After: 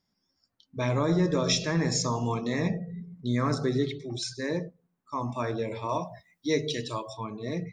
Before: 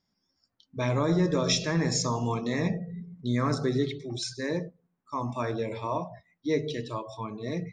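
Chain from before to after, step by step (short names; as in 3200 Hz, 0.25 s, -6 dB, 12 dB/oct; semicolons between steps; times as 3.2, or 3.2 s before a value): 5.89–7.13 high shelf 3200 Hz +12 dB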